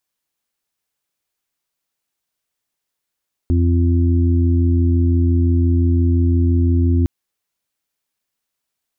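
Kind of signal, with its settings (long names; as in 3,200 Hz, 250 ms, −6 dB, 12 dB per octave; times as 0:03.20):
steady harmonic partials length 3.56 s, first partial 85.8 Hz, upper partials −19/−7/−12.5 dB, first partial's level −12.5 dB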